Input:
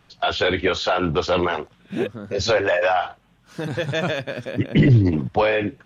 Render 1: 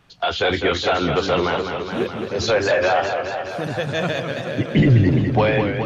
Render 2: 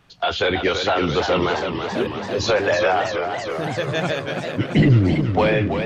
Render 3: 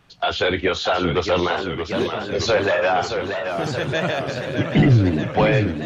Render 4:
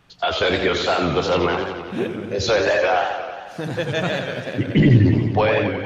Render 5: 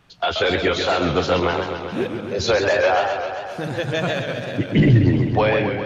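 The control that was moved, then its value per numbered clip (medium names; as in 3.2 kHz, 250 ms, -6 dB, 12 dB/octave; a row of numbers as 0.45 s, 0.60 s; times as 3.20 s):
modulated delay, time: 210 ms, 329 ms, 626 ms, 89 ms, 132 ms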